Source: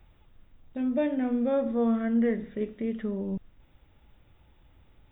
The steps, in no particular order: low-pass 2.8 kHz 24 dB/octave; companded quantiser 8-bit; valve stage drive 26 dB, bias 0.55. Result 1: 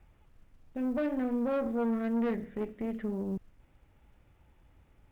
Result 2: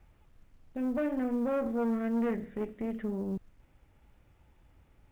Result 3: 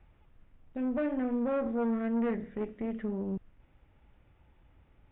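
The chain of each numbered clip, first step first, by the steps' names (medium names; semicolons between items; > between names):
low-pass > companded quantiser > valve stage; valve stage > low-pass > companded quantiser; companded quantiser > valve stage > low-pass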